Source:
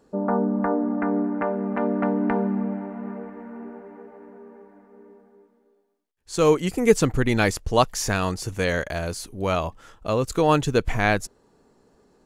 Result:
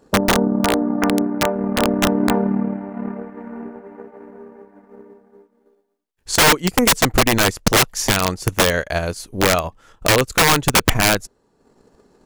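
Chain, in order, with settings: transient shaper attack +10 dB, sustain -7 dB; integer overflow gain 11.5 dB; trim +4.5 dB

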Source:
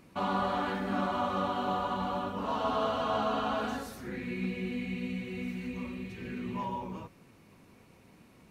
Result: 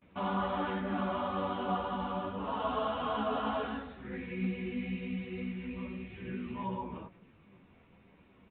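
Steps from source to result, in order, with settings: resampled via 8 kHz; chorus voices 6, 1.2 Hz, delay 13 ms, depth 3 ms; gate with hold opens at -54 dBFS

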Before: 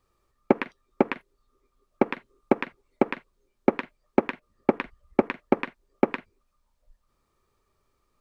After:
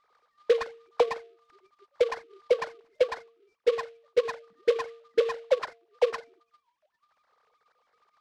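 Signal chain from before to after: formants replaced by sine waves; de-hum 230.4 Hz, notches 3; low-pass that closes with the level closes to 1.2 kHz, closed at -22.5 dBFS; peak limiter -15.5 dBFS, peak gain reduction 6.5 dB; delay time shaken by noise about 2.5 kHz, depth 0.034 ms; trim +3 dB

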